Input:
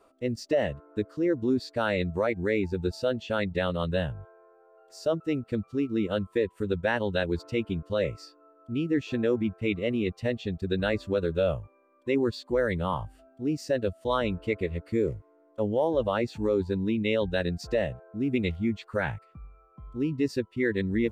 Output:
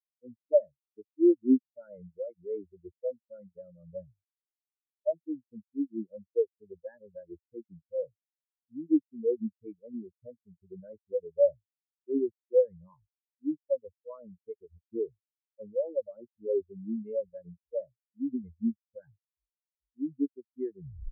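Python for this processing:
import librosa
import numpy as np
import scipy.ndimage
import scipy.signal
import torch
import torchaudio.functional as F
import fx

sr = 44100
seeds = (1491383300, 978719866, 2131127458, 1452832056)

y = fx.tape_stop_end(x, sr, length_s=0.34)
y = fx.spectral_expand(y, sr, expansion=4.0)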